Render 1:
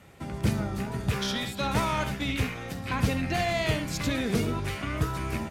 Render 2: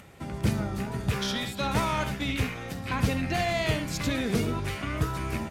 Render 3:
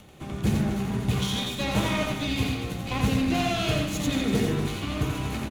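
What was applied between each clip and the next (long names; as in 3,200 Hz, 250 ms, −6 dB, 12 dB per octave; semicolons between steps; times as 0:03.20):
upward compression, threshold −47 dBFS
lower of the sound and its delayed copy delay 0.3 ms; loudspeakers that aren't time-aligned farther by 30 metres −4 dB, 82 metres −10 dB; on a send at −4.5 dB: convolution reverb RT60 0.70 s, pre-delay 3 ms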